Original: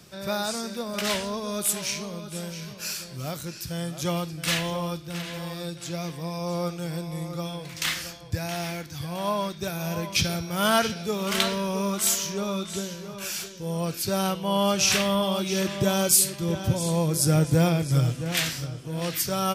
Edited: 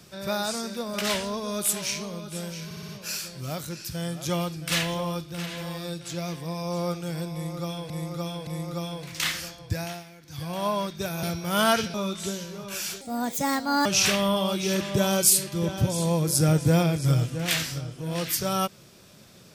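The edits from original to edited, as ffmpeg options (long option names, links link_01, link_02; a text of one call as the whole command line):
ffmpeg -i in.wav -filter_complex "[0:a]asplit=13[link_01][link_02][link_03][link_04][link_05][link_06][link_07][link_08][link_09][link_10][link_11][link_12][link_13];[link_01]atrim=end=2.712[link_14];[link_02]atrim=start=2.648:end=2.712[link_15];[link_03]atrim=start=2.648:end=2.712[link_16];[link_04]atrim=start=2.648:end=2.712[link_17];[link_05]atrim=start=2.648:end=7.662[link_18];[link_06]atrim=start=7.088:end=7.662[link_19];[link_07]atrim=start=7.088:end=8.66,asetpts=PTS-STARTPTS,afade=type=out:start_time=1.332:duration=0.24:silence=0.16788[link_20];[link_08]atrim=start=8.66:end=8.82,asetpts=PTS-STARTPTS,volume=-15.5dB[link_21];[link_09]atrim=start=8.82:end=9.852,asetpts=PTS-STARTPTS,afade=type=in:duration=0.24:silence=0.16788[link_22];[link_10]atrim=start=10.288:end=11.002[link_23];[link_11]atrim=start=12.438:end=13.514[link_24];[link_12]atrim=start=13.51:end=14.72,asetpts=PTS-STARTPTS,asetrate=63063,aresample=44100,atrim=end_sample=37315,asetpts=PTS-STARTPTS[link_25];[link_13]atrim=start=14.716[link_26];[link_14][link_15]acrossfade=duration=0.004:curve1=hsin:curve2=hsin[link_27];[link_27][link_16]acrossfade=duration=0.004:curve1=hsin:curve2=hsin[link_28];[link_28][link_17]acrossfade=duration=0.004:curve1=hsin:curve2=hsin[link_29];[link_29][link_18]acrossfade=duration=0.004:curve1=hsin:curve2=hsin[link_30];[link_30][link_19]acrossfade=duration=0.004:curve1=hsin:curve2=hsin[link_31];[link_20][link_21][link_22]concat=n=3:v=0:a=1[link_32];[link_31][link_32]acrossfade=duration=0.004:curve1=hsin:curve2=hsin[link_33];[link_33][link_23]acrossfade=duration=0.004:curve1=hsin:curve2=hsin[link_34];[link_34][link_24]acrossfade=duration=0.004:curve1=hsin:curve2=hsin[link_35];[link_35][link_25]acrossfade=duration=0.004:curve1=hsin:curve2=hsin[link_36];[link_36][link_26]acrossfade=duration=0.004:curve1=hsin:curve2=hsin" out.wav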